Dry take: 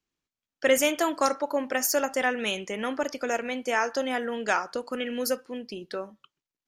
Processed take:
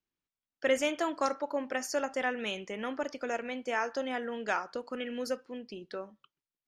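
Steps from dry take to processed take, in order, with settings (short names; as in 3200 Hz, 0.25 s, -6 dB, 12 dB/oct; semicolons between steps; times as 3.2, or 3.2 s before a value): air absorption 77 m; gain -5.5 dB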